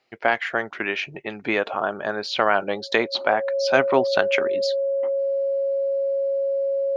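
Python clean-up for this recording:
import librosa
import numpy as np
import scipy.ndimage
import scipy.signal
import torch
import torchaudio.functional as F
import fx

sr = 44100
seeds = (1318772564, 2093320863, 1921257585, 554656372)

y = fx.notch(x, sr, hz=550.0, q=30.0)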